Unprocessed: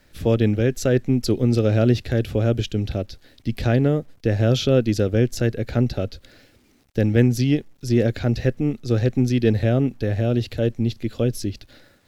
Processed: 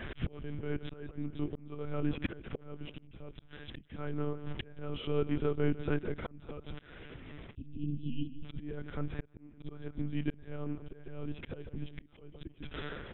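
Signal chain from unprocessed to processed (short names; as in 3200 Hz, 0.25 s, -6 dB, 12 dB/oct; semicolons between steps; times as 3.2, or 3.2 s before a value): dynamic EQ 1300 Hz, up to +8 dB, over -48 dBFS, Q 3; flipped gate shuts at -19 dBFS, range -26 dB; spectral delete 6.93–7.76, 400–2700 Hz; on a send: feedback echo 0.148 s, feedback 43%, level -16 dB; on the sum: monotone LPC vocoder at 8 kHz 160 Hz; auto swell 0.742 s; speed mistake 48 kHz file played as 44.1 kHz; gain +15.5 dB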